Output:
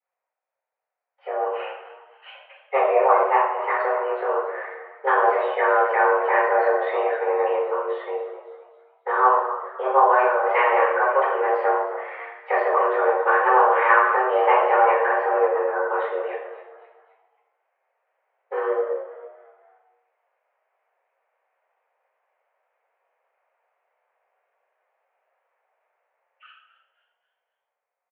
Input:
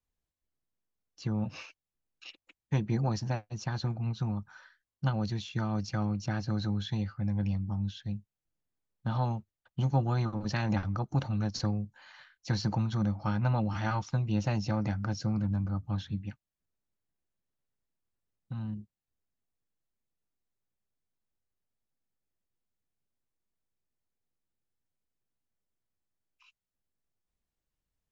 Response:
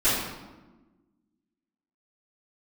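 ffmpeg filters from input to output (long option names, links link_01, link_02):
-filter_complex "[0:a]aemphasis=mode=reproduction:type=riaa,dynaudnorm=framelen=150:gausssize=21:maxgain=15dB,highpass=frequency=370:width_type=q:width=0.5412,highpass=frequency=370:width_type=q:width=1.307,lowpass=frequency=2300:width_type=q:width=0.5176,lowpass=frequency=2300:width_type=q:width=0.7071,lowpass=frequency=2300:width_type=q:width=1.932,afreqshift=260,asplit=5[link_01][link_02][link_03][link_04][link_05];[link_02]adelay=265,afreqshift=68,volume=-16dB[link_06];[link_03]adelay=530,afreqshift=136,volume=-23.3dB[link_07];[link_04]adelay=795,afreqshift=204,volume=-30.7dB[link_08];[link_05]adelay=1060,afreqshift=272,volume=-38dB[link_09];[link_01][link_06][link_07][link_08][link_09]amix=inputs=5:normalize=0[link_10];[1:a]atrim=start_sample=2205,asetrate=61740,aresample=44100[link_11];[link_10][link_11]afir=irnorm=-1:irlink=0,volume=-1.5dB"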